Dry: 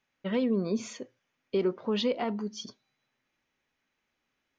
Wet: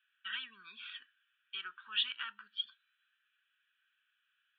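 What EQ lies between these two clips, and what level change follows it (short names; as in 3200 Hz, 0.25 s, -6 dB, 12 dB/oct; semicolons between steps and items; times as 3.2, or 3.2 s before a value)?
elliptic band-pass 1500–3400 Hz, stop band 50 dB; air absorption 290 m; fixed phaser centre 2100 Hz, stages 6; +13.0 dB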